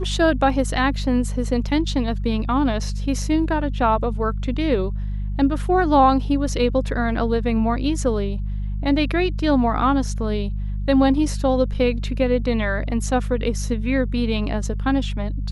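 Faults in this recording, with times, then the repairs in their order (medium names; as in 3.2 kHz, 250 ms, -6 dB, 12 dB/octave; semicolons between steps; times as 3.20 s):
hum 50 Hz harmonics 4 -25 dBFS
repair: de-hum 50 Hz, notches 4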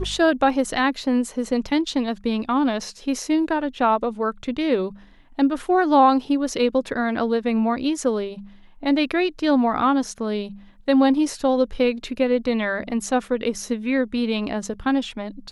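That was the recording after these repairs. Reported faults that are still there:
nothing left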